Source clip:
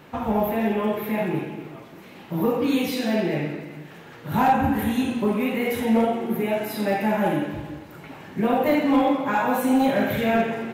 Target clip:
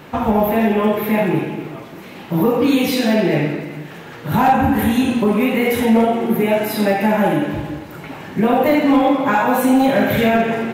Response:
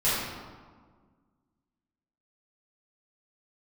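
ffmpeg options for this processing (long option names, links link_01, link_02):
-af "alimiter=limit=-15dB:level=0:latency=1:release=151,volume=8.5dB"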